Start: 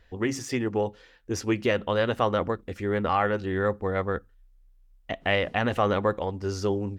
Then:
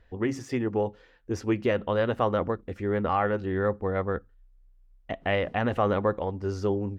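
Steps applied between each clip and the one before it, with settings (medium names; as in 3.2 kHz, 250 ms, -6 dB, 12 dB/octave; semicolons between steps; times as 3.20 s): treble shelf 2.6 kHz -11 dB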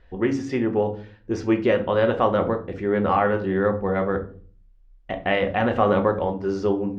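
low-pass 5.3 kHz 12 dB/octave; hum notches 50/100/150/200 Hz; simulated room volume 330 m³, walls furnished, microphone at 0.99 m; trim +4 dB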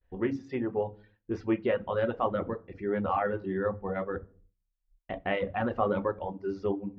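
expander -44 dBFS; reverb removal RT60 1.4 s; distance through air 180 m; trim -6.5 dB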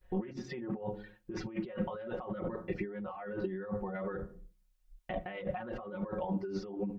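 compressor with a negative ratio -40 dBFS, ratio -1; comb 5.5 ms, depth 75%; trim -1 dB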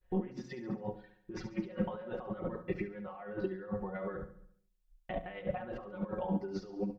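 on a send: feedback delay 70 ms, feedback 54%, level -11 dB; on the sum: upward expansion 1.5:1, over -50 dBFS; trim +2 dB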